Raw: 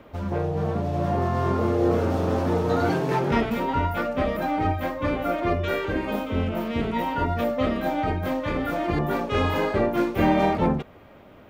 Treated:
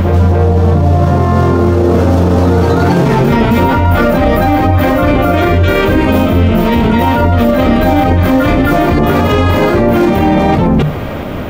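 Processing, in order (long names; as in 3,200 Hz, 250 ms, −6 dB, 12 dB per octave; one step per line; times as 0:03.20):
bass and treble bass +7 dB, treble +3 dB
reversed playback
downward compressor, threshold −27 dBFS, peak gain reduction 14 dB
reversed playback
mains-hum notches 50/100/150/200 Hz
backwards echo 266 ms −6.5 dB
boost into a limiter +27.5 dB
level −1 dB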